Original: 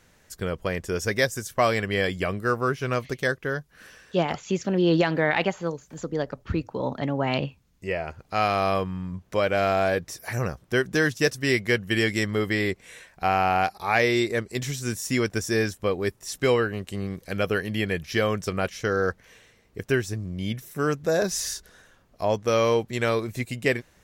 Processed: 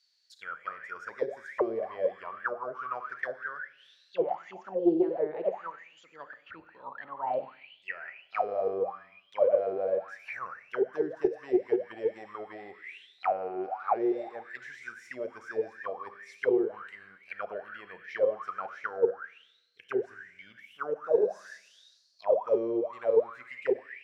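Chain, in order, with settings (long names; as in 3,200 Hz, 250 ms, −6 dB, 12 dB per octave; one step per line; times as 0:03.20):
four-comb reverb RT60 1.3 s, combs from 31 ms, DRR 7 dB
envelope filter 370–4,600 Hz, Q 17, down, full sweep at −17 dBFS
highs frequency-modulated by the lows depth 0.11 ms
level +7.5 dB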